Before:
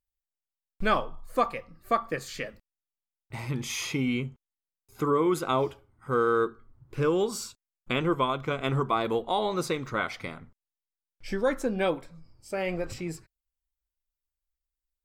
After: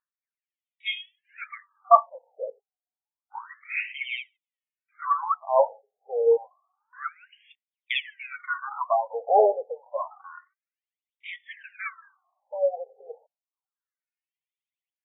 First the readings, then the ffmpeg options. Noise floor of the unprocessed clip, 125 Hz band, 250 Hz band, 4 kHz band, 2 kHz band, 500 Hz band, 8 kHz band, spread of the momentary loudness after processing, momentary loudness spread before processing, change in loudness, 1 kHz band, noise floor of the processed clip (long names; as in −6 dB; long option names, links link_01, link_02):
below −85 dBFS, below −40 dB, below −25 dB, −0.5 dB, +0.5 dB, +2.0 dB, below −40 dB, 23 LU, 14 LU, +2.5 dB, +4.0 dB, below −85 dBFS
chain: -af "aphaser=in_gain=1:out_gain=1:delay=2.8:decay=0.75:speed=0.53:type=sinusoidal,afftfilt=real='re*between(b*sr/1024,580*pow(2700/580,0.5+0.5*sin(2*PI*0.29*pts/sr))/1.41,580*pow(2700/580,0.5+0.5*sin(2*PI*0.29*pts/sr))*1.41)':imag='im*between(b*sr/1024,580*pow(2700/580,0.5+0.5*sin(2*PI*0.29*pts/sr))/1.41,580*pow(2700/580,0.5+0.5*sin(2*PI*0.29*pts/sr))*1.41)':win_size=1024:overlap=0.75,volume=2dB"